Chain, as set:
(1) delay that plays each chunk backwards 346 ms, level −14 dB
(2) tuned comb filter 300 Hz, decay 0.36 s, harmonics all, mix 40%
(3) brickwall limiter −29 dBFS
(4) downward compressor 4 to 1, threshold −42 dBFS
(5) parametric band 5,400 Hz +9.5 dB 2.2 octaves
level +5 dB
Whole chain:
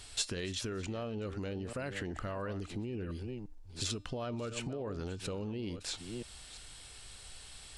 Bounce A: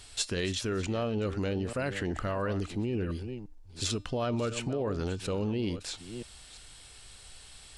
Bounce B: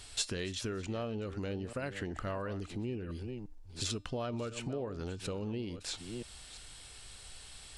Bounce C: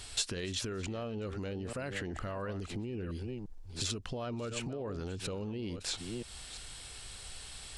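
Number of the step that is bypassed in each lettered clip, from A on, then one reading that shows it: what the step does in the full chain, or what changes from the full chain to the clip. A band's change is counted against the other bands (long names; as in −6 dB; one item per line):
4, change in momentary loudness spread +6 LU
3, average gain reduction 1.5 dB
2, change in momentary loudness spread −3 LU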